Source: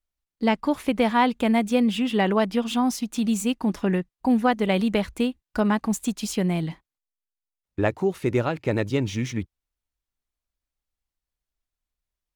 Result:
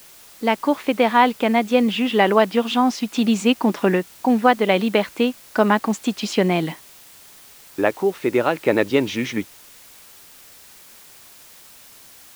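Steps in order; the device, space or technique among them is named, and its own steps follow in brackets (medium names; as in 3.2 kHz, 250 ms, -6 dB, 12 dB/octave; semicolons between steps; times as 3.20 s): dictaphone (band-pass 290–4200 Hz; level rider gain up to 11.5 dB; wow and flutter 25 cents; white noise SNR 25 dB)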